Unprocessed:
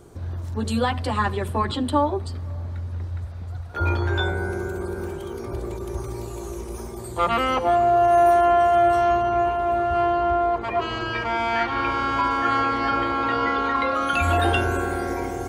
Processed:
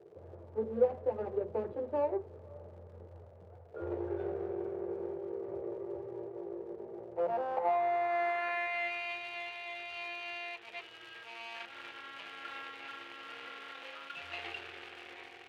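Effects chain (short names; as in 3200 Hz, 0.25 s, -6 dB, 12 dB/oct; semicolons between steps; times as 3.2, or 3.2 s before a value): median filter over 41 samples; tone controls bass -13 dB, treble -7 dB; crackle 130/s -35 dBFS; band-pass sweep 500 Hz -> 2900 Hz, 6.96–9.19; on a send: reverb RT60 0.25 s, pre-delay 3 ms, DRR 12 dB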